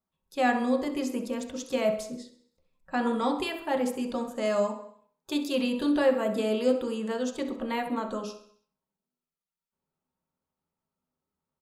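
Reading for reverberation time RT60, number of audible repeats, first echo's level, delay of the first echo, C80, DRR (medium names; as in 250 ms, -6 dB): 0.60 s, 4, -12.0 dB, 65 ms, 12.0 dB, 2.0 dB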